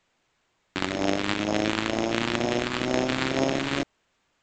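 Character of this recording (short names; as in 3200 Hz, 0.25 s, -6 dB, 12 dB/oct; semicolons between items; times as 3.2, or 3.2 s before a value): phasing stages 2, 2.1 Hz, lowest notch 630–1300 Hz; aliases and images of a low sample rate 5900 Hz, jitter 0%; A-law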